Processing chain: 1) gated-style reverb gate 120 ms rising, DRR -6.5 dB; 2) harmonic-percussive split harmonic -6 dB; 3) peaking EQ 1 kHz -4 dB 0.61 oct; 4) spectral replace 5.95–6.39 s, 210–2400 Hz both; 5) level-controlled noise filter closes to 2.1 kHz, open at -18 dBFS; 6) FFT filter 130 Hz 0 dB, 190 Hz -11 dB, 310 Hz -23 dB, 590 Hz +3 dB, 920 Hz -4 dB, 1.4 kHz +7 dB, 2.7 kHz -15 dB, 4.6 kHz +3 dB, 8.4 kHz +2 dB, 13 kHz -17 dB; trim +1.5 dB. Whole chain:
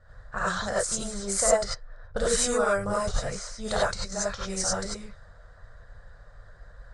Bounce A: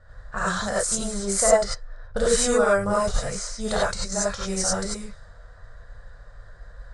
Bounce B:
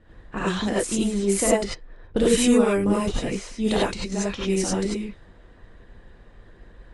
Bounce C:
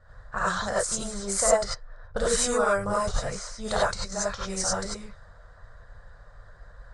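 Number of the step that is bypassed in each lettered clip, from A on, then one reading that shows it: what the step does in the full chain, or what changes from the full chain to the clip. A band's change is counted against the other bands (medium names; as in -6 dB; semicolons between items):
2, 250 Hz band +2.5 dB; 6, 250 Hz band +13.0 dB; 3, 1 kHz band +2.0 dB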